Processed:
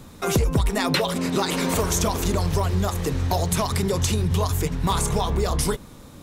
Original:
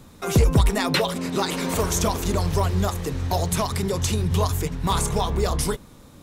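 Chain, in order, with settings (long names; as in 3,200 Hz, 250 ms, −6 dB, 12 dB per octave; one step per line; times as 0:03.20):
downward compressor 4 to 1, threshold −22 dBFS, peak gain reduction 8 dB
level +3.5 dB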